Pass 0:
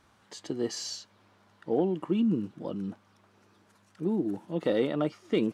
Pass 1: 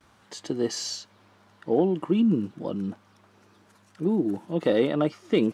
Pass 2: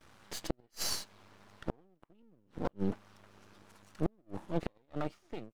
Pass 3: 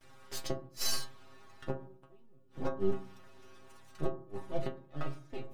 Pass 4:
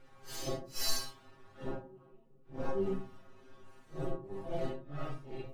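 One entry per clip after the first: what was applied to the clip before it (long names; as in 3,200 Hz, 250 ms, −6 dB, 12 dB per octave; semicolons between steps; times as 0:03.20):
noise gate with hold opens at −55 dBFS; level +4.5 dB
fade-out on the ending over 1.60 s; half-wave rectification; gate with flip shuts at −19 dBFS, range −41 dB; level +2.5 dB
reversed playback; upward compression, threshold −53 dBFS; reversed playback; stiff-string resonator 130 Hz, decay 0.26 s, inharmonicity 0.002; convolution reverb RT60 0.50 s, pre-delay 3 ms, DRR 6.5 dB; level +10 dB
random phases in long frames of 200 ms; one half of a high-frequency compander decoder only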